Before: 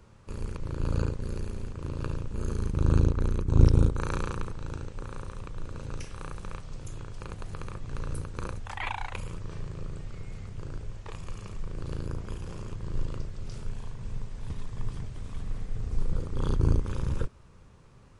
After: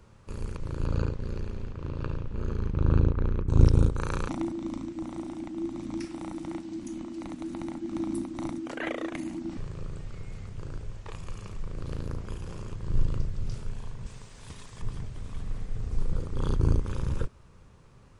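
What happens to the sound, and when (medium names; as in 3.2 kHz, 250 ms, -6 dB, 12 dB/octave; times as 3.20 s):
0.85–3.47 s: low-pass 5.7 kHz -> 2.6 kHz
4.28–9.57 s: frequency shift -350 Hz
11.48–12.25 s: loudspeaker Doppler distortion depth 0.33 ms
12.88–13.55 s: tone controls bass +6 dB, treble 0 dB
14.06–14.82 s: tilt EQ +2.5 dB/octave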